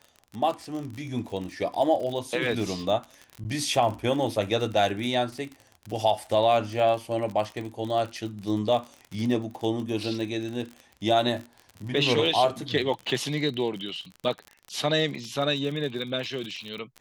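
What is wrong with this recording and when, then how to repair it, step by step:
crackle 40 per s -32 dBFS
3.44–3.45 s: dropout 9.2 ms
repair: de-click; interpolate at 3.44 s, 9.2 ms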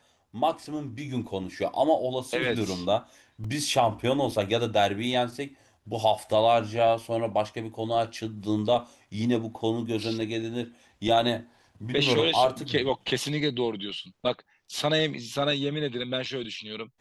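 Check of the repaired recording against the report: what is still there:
nothing left

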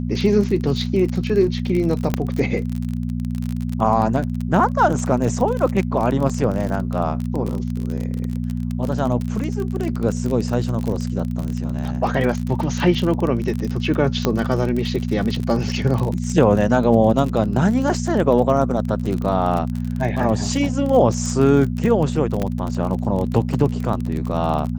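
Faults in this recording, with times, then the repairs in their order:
crackle 35 per s -23 dBFS
hum 60 Hz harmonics 4 -24 dBFS
2.14 s: pop -6 dBFS
14.25 s: pop -4 dBFS
22.42 s: pop -11 dBFS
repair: de-click; de-hum 60 Hz, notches 4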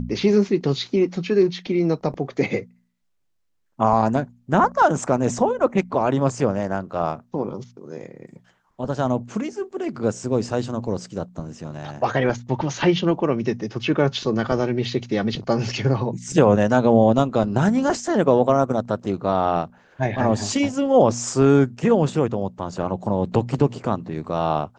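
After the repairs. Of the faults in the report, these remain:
2.14 s: pop
22.42 s: pop

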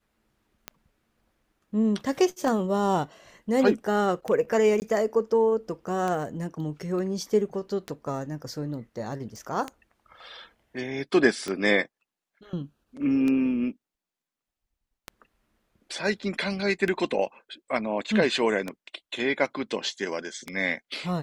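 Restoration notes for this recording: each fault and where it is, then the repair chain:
tick 33 1/3 rpm -16 dBFS
4.80–4.82 s: dropout 19 ms
9.36 s: pop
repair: de-click; interpolate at 4.80 s, 19 ms

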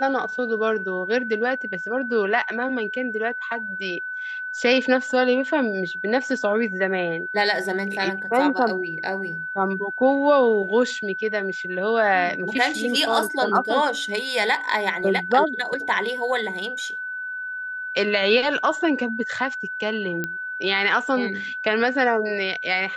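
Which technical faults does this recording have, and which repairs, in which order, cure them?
whine 1.5 kHz -28 dBFS
20.24 s: pop -13 dBFS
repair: de-click; band-stop 1.5 kHz, Q 30

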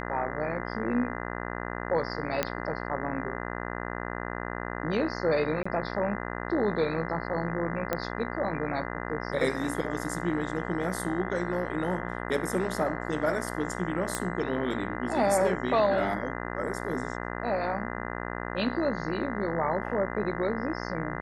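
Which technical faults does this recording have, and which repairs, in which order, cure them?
buzz 60 Hz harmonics 34 -35 dBFS
2.43 s: pop -10 dBFS
5.63–5.66 s: dropout 25 ms
7.93 s: pop -13 dBFS
14.15 s: pop -13 dBFS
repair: de-click; de-hum 60 Hz, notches 34; interpolate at 5.63 s, 25 ms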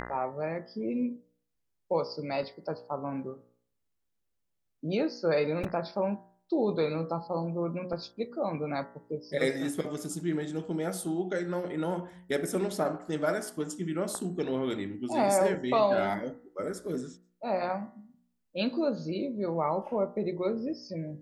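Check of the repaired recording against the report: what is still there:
nothing left

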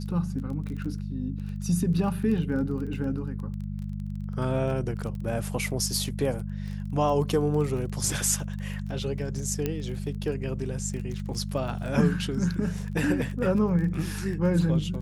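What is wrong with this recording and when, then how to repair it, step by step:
crackle 20 per s -34 dBFS
hum 50 Hz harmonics 4 -33 dBFS
9.66 s: pop -14 dBFS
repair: de-click; de-hum 50 Hz, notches 4

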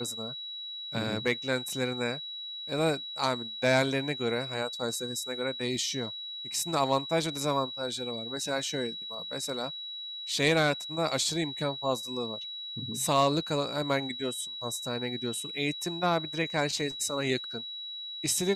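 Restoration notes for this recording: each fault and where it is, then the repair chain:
whine 3.9 kHz -37 dBFS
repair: band-stop 3.9 kHz, Q 30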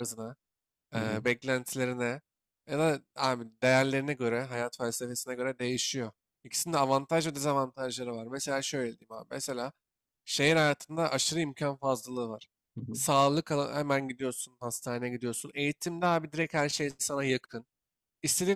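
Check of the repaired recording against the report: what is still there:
nothing left

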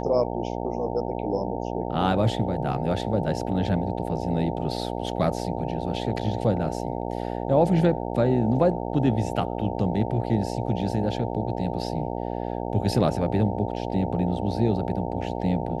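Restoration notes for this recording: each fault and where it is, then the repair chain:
buzz 60 Hz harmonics 15 -30 dBFS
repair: de-hum 60 Hz, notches 15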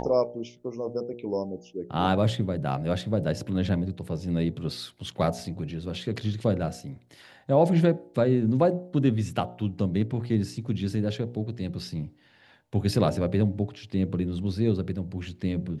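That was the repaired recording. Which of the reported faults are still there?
nothing left

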